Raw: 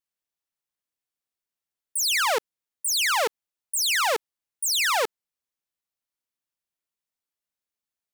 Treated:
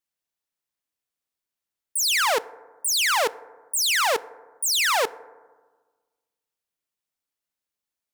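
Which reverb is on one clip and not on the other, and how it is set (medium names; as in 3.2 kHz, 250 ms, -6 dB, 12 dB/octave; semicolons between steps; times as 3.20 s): FDN reverb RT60 1.4 s, low-frequency decay 1.2×, high-frequency decay 0.3×, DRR 17 dB; trim +1.5 dB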